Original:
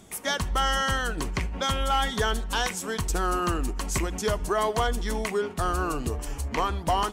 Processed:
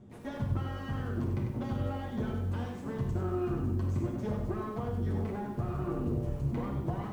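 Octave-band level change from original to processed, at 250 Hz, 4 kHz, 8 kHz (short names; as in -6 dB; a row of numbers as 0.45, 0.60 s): -0.5 dB, under -20 dB, under -25 dB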